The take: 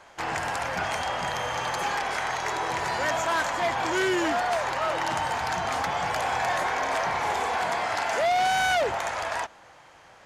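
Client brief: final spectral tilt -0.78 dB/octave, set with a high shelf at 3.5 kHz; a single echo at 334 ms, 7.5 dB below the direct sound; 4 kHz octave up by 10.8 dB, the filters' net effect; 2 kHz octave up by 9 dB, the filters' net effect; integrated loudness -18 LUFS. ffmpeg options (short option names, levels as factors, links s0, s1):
-af "equalizer=f=2000:t=o:g=8,highshelf=f=3500:g=8.5,equalizer=f=4000:t=o:g=5.5,aecho=1:1:334:0.422,volume=1.19"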